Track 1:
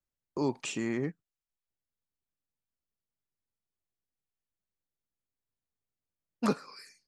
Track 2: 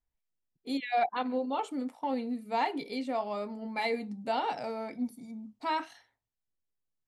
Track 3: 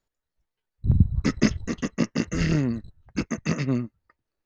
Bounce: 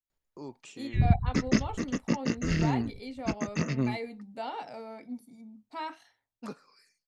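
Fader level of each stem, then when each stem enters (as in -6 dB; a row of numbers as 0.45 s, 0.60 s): -12.5 dB, -6.0 dB, -4.0 dB; 0.00 s, 0.10 s, 0.10 s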